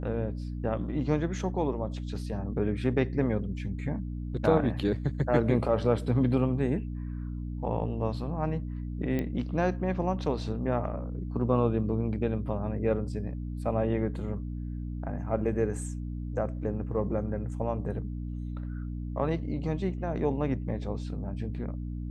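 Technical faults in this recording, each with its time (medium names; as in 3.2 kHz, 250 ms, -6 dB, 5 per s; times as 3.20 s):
hum 60 Hz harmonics 5 -35 dBFS
9.19 s: pop -19 dBFS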